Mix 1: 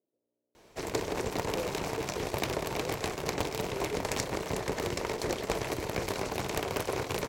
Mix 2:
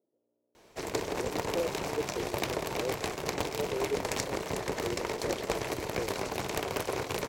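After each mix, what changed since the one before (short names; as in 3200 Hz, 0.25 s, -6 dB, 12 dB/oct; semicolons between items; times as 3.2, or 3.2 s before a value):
speech +6.0 dB; master: add low shelf 170 Hz -3.5 dB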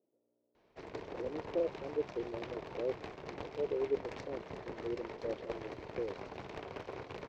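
background -10.5 dB; master: add air absorption 220 m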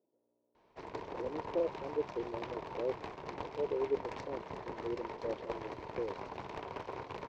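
master: add bell 960 Hz +8.5 dB 0.4 oct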